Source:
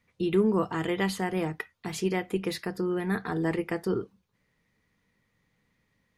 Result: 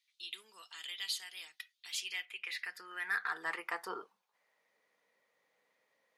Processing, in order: high-pass sweep 3700 Hz -> 570 Hz, 1.7–4.79; soft clip -20 dBFS, distortion -21 dB; 2.25–2.65 tone controls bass -14 dB, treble -10 dB; gain -3 dB

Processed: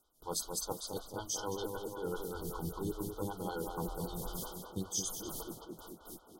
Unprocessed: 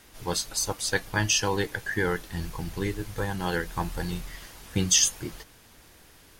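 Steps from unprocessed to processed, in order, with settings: reverse; compressor 5:1, threshold -40 dBFS, peak gain reduction 20.5 dB; reverse; gate with hold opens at -42 dBFS; high shelf 7300 Hz +8 dB; on a send: tape echo 0.218 s, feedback 70%, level -3.5 dB, low-pass 2100 Hz; on the sum: FFT band-reject 1500–3000 Hz; photocell phaser 5.2 Hz; gain +5.5 dB

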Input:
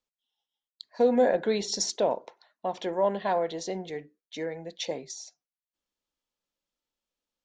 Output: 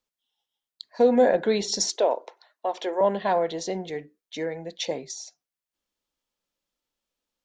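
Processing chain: 1.88–3.01 HPF 330 Hz 24 dB/oct; gain +3.5 dB

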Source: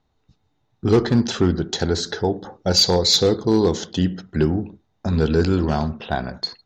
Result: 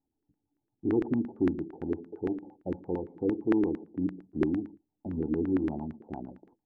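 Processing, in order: vocal tract filter u; LFO low-pass saw down 8.8 Hz 300–1800 Hz; gain -5 dB

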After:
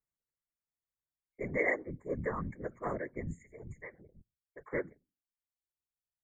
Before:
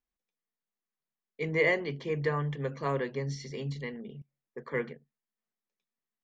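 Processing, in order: notches 60/120/180/240 Hz; reverb removal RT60 1.5 s; FFT band-reject 2200–6500 Hz; whisperiser; 3.43–4.73 bell 240 Hz -14.5 dB 1.2 oct; gain -4 dB

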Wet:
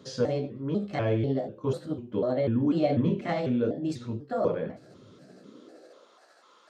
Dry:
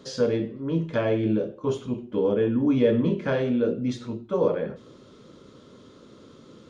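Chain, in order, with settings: trilling pitch shifter +4 st, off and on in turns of 0.247 s; high-pass sweep 98 Hz -> 940 Hz, 5.09–6.2; gain -4 dB

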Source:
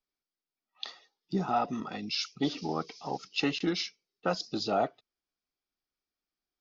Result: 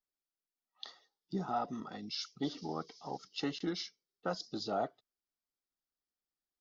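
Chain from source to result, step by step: bell 2500 Hz -14.5 dB 0.25 oct; gain -6.5 dB

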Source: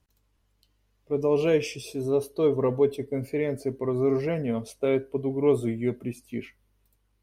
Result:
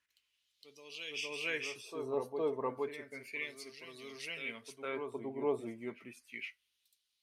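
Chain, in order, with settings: EQ curve 250 Hz 0 dB, 720 Hz -7 dB, 11000 Hz +13 dB; reverse echo 0.462 s -6.5 dB; LFO band-pass sine 0.32 Hz 810–3800 Hz; gain +2.5 dB

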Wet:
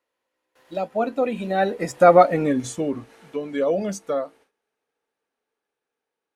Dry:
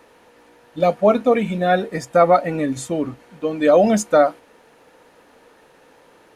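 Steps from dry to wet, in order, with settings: Doppler pass-by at 2.2, 24 m/s, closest 10 m; gate with hold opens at -53 dBFS; bell 390 Hz +4 dB 1 oct; mismatched tape noise reduction encoder only

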